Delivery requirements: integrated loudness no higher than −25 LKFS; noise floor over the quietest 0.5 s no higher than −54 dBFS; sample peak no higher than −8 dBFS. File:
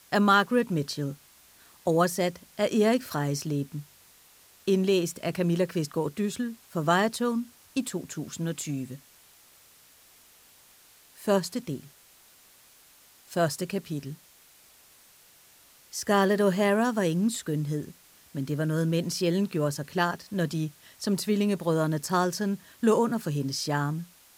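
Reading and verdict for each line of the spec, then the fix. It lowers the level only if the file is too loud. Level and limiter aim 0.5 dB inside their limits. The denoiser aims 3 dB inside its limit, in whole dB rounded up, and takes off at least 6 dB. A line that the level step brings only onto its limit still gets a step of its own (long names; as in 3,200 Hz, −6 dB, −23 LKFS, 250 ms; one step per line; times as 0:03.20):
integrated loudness −28.0 LKFS: in spec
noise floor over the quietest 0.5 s −57 dBFS: in spec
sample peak −10.0 dBFS: in spec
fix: no processing needed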